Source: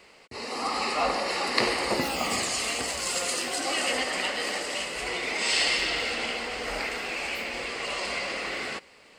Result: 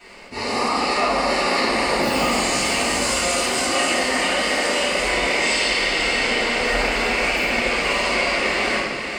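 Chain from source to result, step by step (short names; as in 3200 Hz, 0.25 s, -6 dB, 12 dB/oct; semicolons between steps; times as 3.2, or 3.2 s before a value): compressor, threshold -30 dBFS, peak gain reduction 11.5 dB; diffused feedback echo 0.526 s, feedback 44%, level -7 dB; shoebox room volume 350 m³, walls mixed, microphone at 7.5 m; gain -3.5 dB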